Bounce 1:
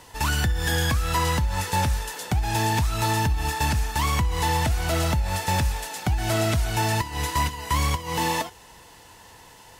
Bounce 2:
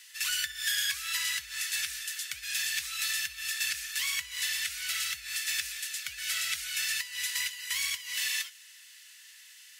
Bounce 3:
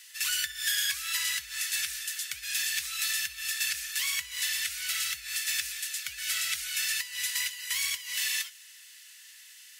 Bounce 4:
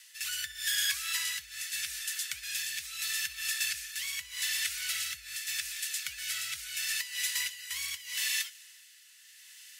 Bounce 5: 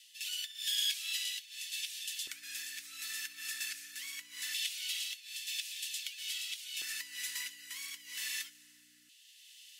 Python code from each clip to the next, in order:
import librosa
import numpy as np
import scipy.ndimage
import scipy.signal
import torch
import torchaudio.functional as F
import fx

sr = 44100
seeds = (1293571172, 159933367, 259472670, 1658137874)

y1 = scipy.signal.sosfilt(scipy.signal.cheby2(4, 40, 900.0, 'highpass', fs=sr, output='sos'), x)
y2 = fx.high_shelf(y1, sr, hz=7300.0, db=4.0)
y3 = fx.rotary(y2, sr, hz=0.8)
y4 = fx.add_hum(y3, sr, base_hz=60, snr_db=21)
y4 = fx.filter_lfo_highpass(y4, sr, shape='square', hz=0.22, low_hz=360.0, high_hz=3100.0, q=2.6)
y4 = y4 * 10.0 ** (-7.5 / 20.0)